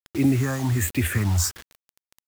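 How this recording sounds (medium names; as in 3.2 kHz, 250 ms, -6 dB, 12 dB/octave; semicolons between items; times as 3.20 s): phasing stages 4, 1.3 Hz, lowest notch 410–1100 Hz; a quantiser's noise floor 6-bit, dither none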